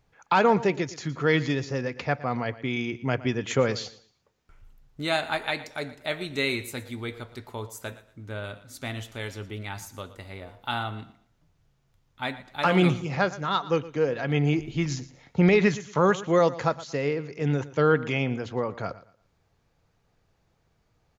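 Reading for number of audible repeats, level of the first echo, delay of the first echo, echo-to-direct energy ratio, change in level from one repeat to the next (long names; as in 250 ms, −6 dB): 2, −17.0 dB, 116 ms, −16.5 dB, −11.5 dB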